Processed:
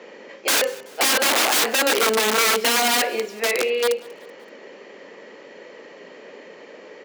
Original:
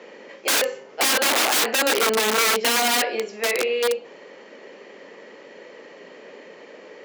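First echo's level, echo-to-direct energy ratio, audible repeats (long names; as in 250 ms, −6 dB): −22.5 dB, −21.5 dB, 3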